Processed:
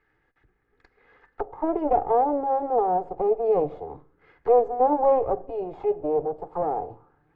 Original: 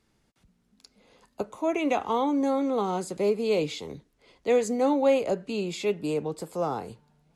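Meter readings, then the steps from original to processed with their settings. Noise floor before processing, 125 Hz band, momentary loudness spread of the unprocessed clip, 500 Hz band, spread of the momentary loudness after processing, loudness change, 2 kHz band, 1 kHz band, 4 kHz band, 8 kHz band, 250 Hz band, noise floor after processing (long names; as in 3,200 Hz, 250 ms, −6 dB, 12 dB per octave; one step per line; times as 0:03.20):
−70 dBFS, −4.5 dB, 13 LU, +3.0 dB, 12 LU, +3.0 dB, below −10 dB, +7.5 dB, below −25 dB, below −35 dB, −4.0 dB, −70 dBFS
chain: lower of the sound and its delayed copy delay 2.4 ms
rectangular room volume 2,500 cubic metres, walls furnished, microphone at 0.4 metres
envelope-controlled low-pass 680–1,800 Hz down, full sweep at −31.5 dBFS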